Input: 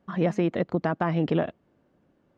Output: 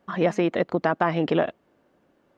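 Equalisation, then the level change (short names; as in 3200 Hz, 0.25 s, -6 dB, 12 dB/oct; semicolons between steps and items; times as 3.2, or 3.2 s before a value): bell 130 Hz -4.5 dB 2.2 oct; low shelf 200 Hz -8 dB; +6.0 dB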